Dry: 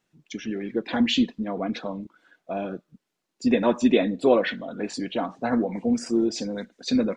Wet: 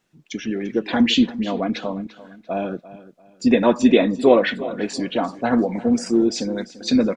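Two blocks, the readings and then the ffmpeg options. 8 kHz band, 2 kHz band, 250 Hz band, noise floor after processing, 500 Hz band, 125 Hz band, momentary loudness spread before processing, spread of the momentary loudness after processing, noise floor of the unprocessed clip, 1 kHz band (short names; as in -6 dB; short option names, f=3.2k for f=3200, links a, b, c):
+5.0 dB, +5.0 dB, +5.0 dB, -55 dBFS, +5.0 dB, +5.0 dB, 14 LU, 14 LU, -81 dBFS, +5.0 dB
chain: -af "aecho=1:1:343|686|1029:0.141|0.0424|0.0127,volume=5dB"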